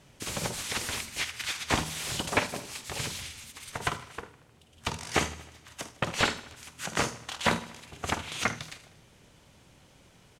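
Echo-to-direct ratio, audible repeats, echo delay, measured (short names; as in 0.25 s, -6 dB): -15.5 dB, 4, 77 ms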